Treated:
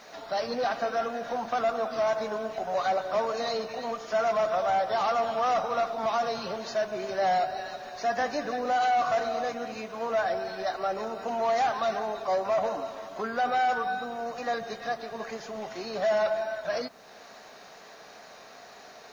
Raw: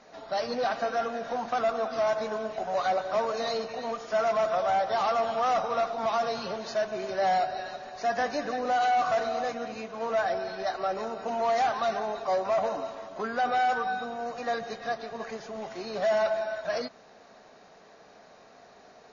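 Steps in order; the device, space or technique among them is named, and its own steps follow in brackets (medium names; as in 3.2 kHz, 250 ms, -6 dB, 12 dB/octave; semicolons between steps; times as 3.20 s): noise-reduction cassette on a plain deck (tape noise reduction on one side only encoder only; wow and flutter 23 cents; white noise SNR 41 dB)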